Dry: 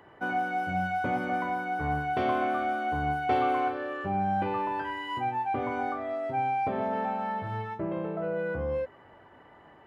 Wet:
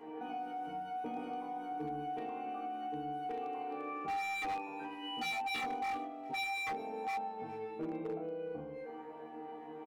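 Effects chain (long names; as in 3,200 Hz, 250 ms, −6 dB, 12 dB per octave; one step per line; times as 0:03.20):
low-shelf EQ 100 Hz −11.5 dB
in parallel at +2 dB: compressor whose output falls as the input rises −35 dBFS
on the sum: brickwall limiter −25 dBFS, peak gain reduction 10.5 dB
resonators tuned to a chord D#3 fifth, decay 0.67 s
hollow resonant body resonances 300/420/750/2,400 Hz, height 16 dB, ringing for 45 ms
echo ahead of the sound 104 ms −21 dB
wave folding −38.5 dBFS
on a send: single-tap delay 412 ms −22 dB
on the sum: level +6.5 dB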